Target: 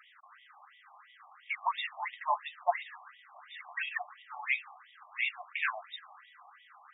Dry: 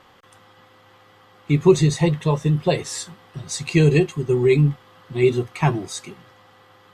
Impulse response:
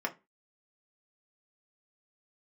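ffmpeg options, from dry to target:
-af "acrusher=bits=9:mode=log:mix=0:aa=0.000001,aeval=exprs='val(0)+0.00631*(sin(2*PI*50*n/s)+sin(2*PI*2*50*n/s)/2+sin(2*PI*3*50*n/s)/3+sin(2*PI*4*50*n/s)/4+sin(2*PI*5*50*n/s)/5)':c=same,afftfilt=real='re*between(b*sr/1024,840*pow(2700/840,0.5+0.5*sin(2*PI*2.9*pts/sr))/1.41,840*pow(2700/840,0.5+0.5*sin(2*PI*2.9*pts/sr))*1.41)':imag='im*between(b*sr/1024,840*pow(2700/840,0.5+0.5*sin(2*PI*2.9*pts/sr))/1.41,840*pow(2700/840,0.5+0.5*sin(2*PI*2.9*pts/sr))*1.41)':win_size=1024:overlap=0.75"

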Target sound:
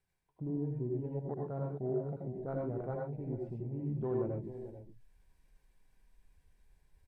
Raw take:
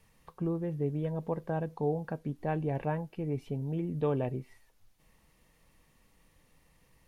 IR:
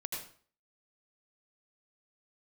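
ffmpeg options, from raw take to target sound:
-filter_complex "[0:a]asetrate=38170,aresample=44100,atempo=1.15535,areverse,acompressor=mode=upward:threshold=0.00631:ratio=2.5,areverse,aecho=1:1:439:0.266,afwtdn=0.0126[s0];[1:a]atrim=start_sample=2205,atrim=end_sample=6174[s1];[s0][s1]afir=irnorm=-1:irlink=0,volume=0.596"

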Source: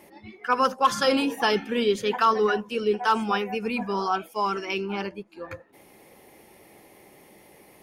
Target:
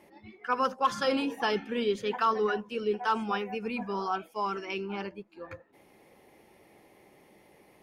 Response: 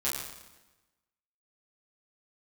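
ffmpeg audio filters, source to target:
-af "highshelf=f=7000:g=-10,volume=0.531"

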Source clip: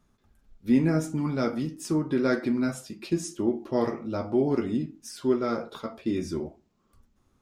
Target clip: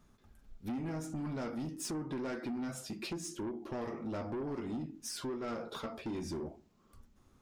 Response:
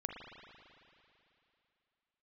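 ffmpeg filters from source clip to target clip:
-af "acompressor=threshold=0.02:ratio=4,asoftclip=type=tanh:threshold=0.0158,volume=1.26"

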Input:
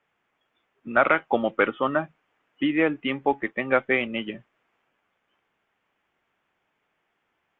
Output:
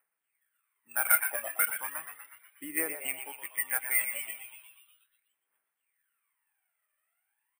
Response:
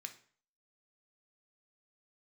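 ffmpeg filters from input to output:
-filter_complex "[0:a]lowpass=f=2000:w=0.5412,lowpass=f=2000:w=1.3066,aderivative,aphaser=in_gain=1:out_gain=1:delay=1.7:decay=0.78:speed=0.36:type=triangular,acrusher=samples=4:mix=1:aa=0.000001,crystalizer=i=5:c=0,asplit=9[s0][s1][s2][s3][s4][s5][s6][s7][s8];[s1]adelay=121,afreqshift=110,volume=0.335[s9];[s2]adelay=242,afreqshift=220,volume=0.204[s10];[s3]adelay=363,afreqshift=330,volume=0.124[s11];[s4]adelay=484,afreqshift=440,volume=0.0759[s12];[s5]adelay=605,afreqshift=550,volume=0.0462[s13];[s6]adelay=726,afreqshift=660,volume=0.0282[s14];[s7]adelay=847,afreqshift=770,volume=0.0172[s15];[s8]adelay=968,afreqshift=880,volume=0.0105[s16];[s0][s9][s10][s11][s12][s13][s14][s15][s16]amix=inputs=9:normalize=0,asplit=2[s17][s18];[1:a]atrim=start_sample=2205,adelay=112[s19];[s18][s19]afir=irnorm=-1:irlink=0,volume=0.237[s20];[s17][s20]amix=inputs=2:normalize=0,volume=0.75"

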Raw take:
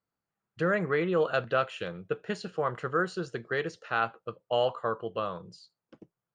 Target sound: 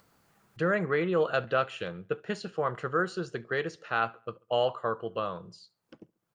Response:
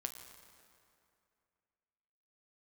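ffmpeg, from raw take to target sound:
-filter_complex "[0:a]acompressor=mode=upward:threshold=0.00447:ratio=2.5,asplit=2[s0][s1];[s1]adelay=69,lowpass=f=4600:p=1,volume=0.0631,asplit=2[s2][s3];[s3]adelay=69,lowpass=f=4600:p=1,volume=0.44,asplit=2[s4][s5];[s5]adelay=69,lowpass=f=4600:p=1,volume=0.44[s6];[s2][s4][s6]amix=inputs=3:normalize=0[s7];[s0][s7]amix=inputs=2:normalize=0"

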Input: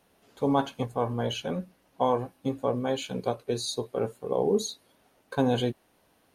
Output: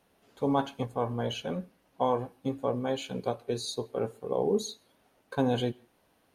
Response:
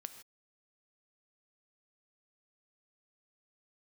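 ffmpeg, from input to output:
-filter_complex "[0:a]asplit=2[s0][s1];[1:a]atrim=start_sample=2205,lowpass=5200[s2];[s1][s2]afir=irnorm=-1:irlink=0,volume=0.376[s3];[s0][s3]amix=inputs=2:normalize=0,volume=0.631"

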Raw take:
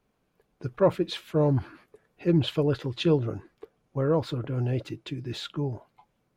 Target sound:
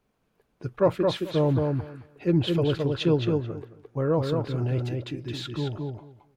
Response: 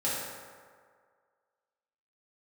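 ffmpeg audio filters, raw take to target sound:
-filter_complex "[0:a]asplit=2[s0][s1];[s1]adelay=218,lowpass=f=4500:p=1,volume=0.668,asplit=2[s2][s3];[s3]adelay=218,lowpass=f=4500:p=1,volume=0.16,asplit=2[s4][s5];[s5]adelay=218,lowpass=f=4500:p=1,volume=0.16[s6];[s0][s2][s4][s6]amix=inputs=4:normalize=0"

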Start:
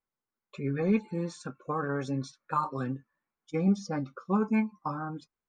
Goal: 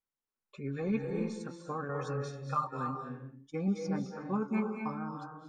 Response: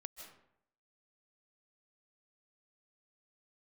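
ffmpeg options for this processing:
-filter_complex "[0:a]asettb=1/sr,asplit=3[s0][s1][s2];[s0]atrim=end=1.894[s3];[s1]atrim=start=1.89:end=2.67,asetpts=PTS-STARTPTS,afade=t=in:d=0.004:c=qsin,afade=t=out:st=0.776:d=0.004:c=qsin,aecho=1:1:1.6:0.83,atrim=end_sample=34398[s4];[s2]atrim=start=2.666[s5];[s3][s4]acrossfade=d=0.004:c1=hsin:c2=qsin[s6];[s6][s5]acrossfade=d=0.004:c1=qsin:c2=hsin[s7];[1:a]atrim=start_sample=2205,afade=t=out:st=0.4:d=0.01,atrim=end_sample=18081,asetrate=30429,aresample=44100[s8];[s7][s8]afir=irnorm=-1:irlink=0,volume=0.794"

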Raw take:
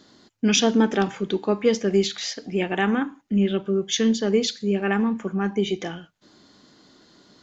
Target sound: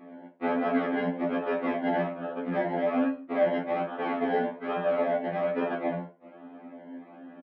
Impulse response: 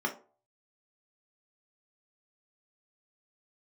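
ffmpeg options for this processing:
-filter_complex "[0:a]acrossover=split=580[s0][s1];[s1]acompressor=threshold=0.0112:ratio=16[s2];[s0][s2]amix=inputs=2:normalize=0,acrusher=samples=28:mix=1:aa=0.000001:lfo=1:lforange=16.8:lforate=1.2,aeval=exprs='0.335*(cos(1*acos(clip(val(0)/0.335,-1,1)))-cos(1*PI/2))+0.0841*(cos(8*acos(clip(val(0)/0.335,-1,1)))-cos(8*PI/2))':c=same,aresample=11025,asoftclip=type=tanh:threshold=0.0501,aresample=44100,highpass=230,equalizer=f=280:t=q:w=4:g=7,equalizer=f=610:t=q:w=4:g=6,equalizer=f=950:t=q:w=4:g=-4,lowpass=f=2600:w=0.5412,lowpass=f=2600:w=1.3066[s3];[1:a]atrim=start_sample=2205[s4];[s3][s4]afir=irnorm=-1:irlink=0,afftfilt=real='re*2*eq(mod(b,4),0)':imag='im*2*eq(mod(b,4),0)':win_size=2048:overlap=0.75"

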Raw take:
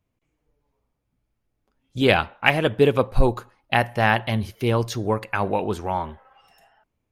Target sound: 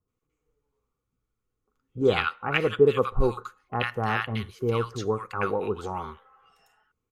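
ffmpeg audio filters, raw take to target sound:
-filter_complex "[0:a]superequalizer=7b=2:8b=0.501:10b=3.16:15b=1.78,acrossover=split=1200[s0][s1];[s1]adelay=80[s2];[s0][s2]amix=inputs=2:normalize=0,acrossover=split=6200[s3][s4];[s4]acompressor=threshold=0.00282:ratio=4:attack=1:release=60[s5];[s3][s5]amix=inputs=2:normalize=0,volume=0.473"

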